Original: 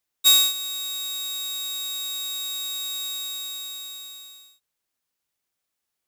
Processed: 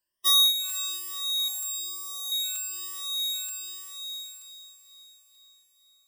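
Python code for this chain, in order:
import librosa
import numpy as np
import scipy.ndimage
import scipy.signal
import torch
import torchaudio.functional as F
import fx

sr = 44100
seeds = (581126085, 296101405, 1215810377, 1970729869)

p1 = fx.spec_ripple(x, sr, per_octave=1.3, drift_hz=1.1, depth_db=23)
p2 = fx.band_shelf(p1, sr, hz=2400.0, db=-10.0, octaves=1.7, at=(1.48, 2.32))
p3 = fx.spec_gate(p2, sr, threshold_db=-30, keep='strong')
p4 = p3 + fx.echo_diffused(p3, sr, ms=489, feedback_pct=55, wet_db=-13.5, dry=0)
p5 = fx.buffer_crackle(p4, sr, first_s=0.69, period_s=0.93, block=256, kind='repeat')
y = F.gain(torch.from_numpy(p5), -7.5).numpy()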